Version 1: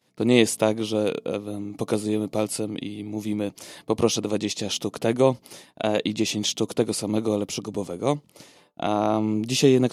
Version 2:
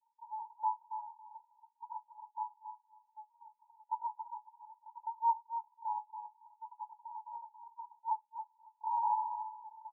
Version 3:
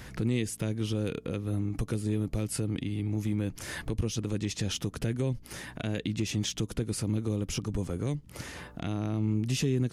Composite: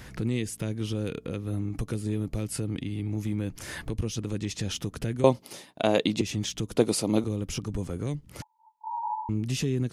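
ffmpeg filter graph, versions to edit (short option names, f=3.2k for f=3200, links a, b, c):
-filter_complex "[0:a]asplit=2[a][b];[2:a]asplit=4[c][d][e][f];[c]atrim=end=5.242[g];[a]atrim=start=5.238:end=6.212[h];[d]atrim=start=6.208:end=6.762[i];[b]atrim=start=6.758:end=7.242[j];[e]atrim=start=7.238:end=8.422[k];[1:a]atrim=start=8.418:end=9.292[l];[f]atrim=start=9.288[m];[g][h]acrossfade=d=0.004:c1=hsin:c2=hsin[n];[n][i]acrossfade=d=0.004:c1=hsin:c2=hsin[o];[o][j]acrossfade=d=0.004:c1=hsin:c2=hsin[p];[p][k]acrossfade=d=0.004:c1=hsin:c2=hsin[q];[q][l]acrossfade=d=0.004:c1=hsin:c2=hsin[r];[r][m]acrossfade=d=0.004:c1=hsin:c2=hsin"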